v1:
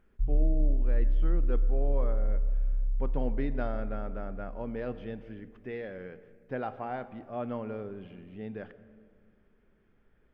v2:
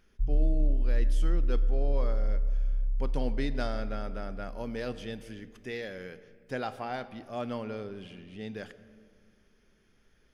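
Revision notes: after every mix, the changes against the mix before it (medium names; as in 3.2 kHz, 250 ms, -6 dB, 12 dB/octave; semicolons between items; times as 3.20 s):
speech: remove low-pass 1.2 kHz 12 dB/octave; master: add peaking EQ 2.8 kHz -6 dB 1.5 oct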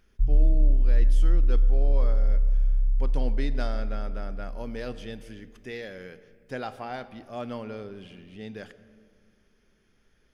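background +6.0 dB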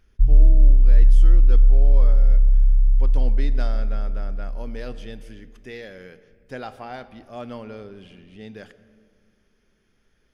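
background: add tone controls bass +7 dB, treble -5 dB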